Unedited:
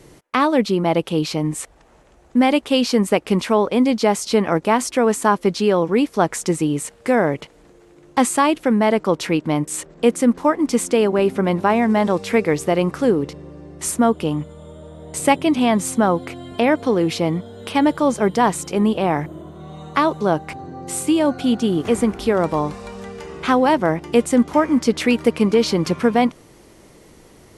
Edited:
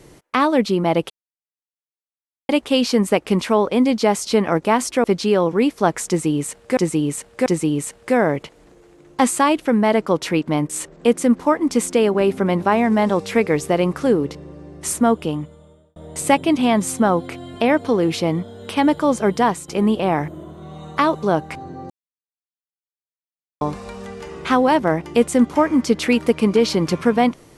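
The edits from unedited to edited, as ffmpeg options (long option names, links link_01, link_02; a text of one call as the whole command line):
ffmpeg -i in.wav -filter_complex "[0:a]asplit=10[link_01][link_02][link_03][link_04][link_05][link_06][link_07][link_08][link_09][link_10];[link_01]atrim=end=1.1,asetpts=PTS-STARTPTS,afade=type=out:start_time=1.096:duration=0.004:curve=hsin[link_11];[link_02]atrim=start=1.1:end=2.49,asetpts=PTS-STARTPTS,volume=0[link_12];[link_03]atrim=start=2.49:end=5.042,asetpts=PTS-STARTPTS,afade=type=in:duration=0.004:curve=hsin[link_13];[link_04]atrim=start=5.398:end=7.132[link_14];[link_05]atrim=start=6.438:end=7.132[link_15];[link_06]atrim=start=6.438:end=14.94,asetpts=PTS-STARTPTS,afade=type=out:start_time=7.692:duration=0.81[link_16];[link_07]atrim=start=14.94:end=18.66,asetpts=PTS-STARTPTS,afade=type=in:duration=0.004:curve=hsin,afade=type=out:start_time=3.46:duration=0.26:silence=0.266073[link_17];[link_08]atrim=start=18.66:end=20.88,asetpts=PTS-STARTPTS,afade=type=in:duration=0.004:curve=hsin:silence=0.266073,afade=type=out:start_time=2.216:duration=0.004:curve=hsin[link_18];[link_09]atrim=start=20.88:end=22.59,asetpts=PTS-STARTPTS,volume=0[link_19];[link_10]atrim=start=22.59,asetpts=PTS-STARTPTS,afade=type=in:duration=0.004:curve=hsin[link_20];[link_11][link_12][link_13]concat=n=3:v=0:a=1[link_21];[link_21][link_14]acrossfade=duration=0.004:curve1=hsin:curve2=hsin[link_22];[link_22][link_15]acrossfade=duration=0.004:curve1=hsin:curve2=hsin[link_23];[link_16][link_17][link_18][link_19][link_20]concat=n=5:v=0:a=1[link_24];[link_23][link_24]acrossfade=duration=0.004:curve1=hsin:curve2=hsin" out.wav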